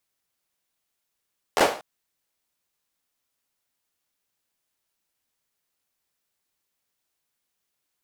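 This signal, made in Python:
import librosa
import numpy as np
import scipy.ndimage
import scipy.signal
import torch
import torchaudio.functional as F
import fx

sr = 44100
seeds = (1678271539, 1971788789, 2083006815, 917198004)

y = fx.drum_clap(sr, seeds[0], length_s=0.24, bursts=4, spacing_ms=12, hz=600.0, decay_s=0.4)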